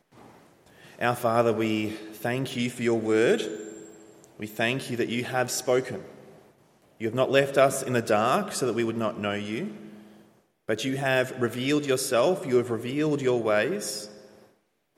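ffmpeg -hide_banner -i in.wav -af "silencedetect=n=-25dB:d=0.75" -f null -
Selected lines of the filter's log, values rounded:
silence_start: 0.00
silence_end: 1.01 | silence_duration: 1.01
silence_start: 3.48
silence_end: 4.42 | silence_duration: 0.94
silence_start: 5.96
silence_end: 7.03 | silence_duration: 1.07
silence_start: 9.64
silence_end: 10.69 | silence_duration: 1.05
silence_start: 13.97
silence_end: 14.98 | silence_duration: 1.01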